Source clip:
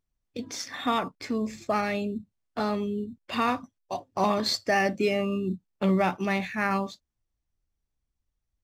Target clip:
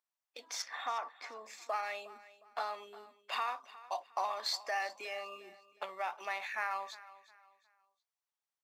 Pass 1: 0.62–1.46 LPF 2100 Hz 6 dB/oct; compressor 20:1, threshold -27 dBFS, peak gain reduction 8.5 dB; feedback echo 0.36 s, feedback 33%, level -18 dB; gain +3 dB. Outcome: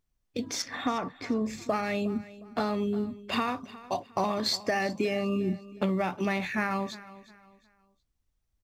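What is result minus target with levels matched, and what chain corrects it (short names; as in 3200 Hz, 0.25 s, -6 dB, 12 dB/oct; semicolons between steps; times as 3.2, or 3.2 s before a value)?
500 Hz band +4.5 dB
0.62–1.46 LPF 2100 Hz 6 dB/oct; compressor 20:1, threshold -27 dBFS, peak gain reduction 8.5 dB; ladder high-pass 640 Hz, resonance 30%; feedback echo 0.36 s, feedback 33%, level -18 dB; gain +3 dB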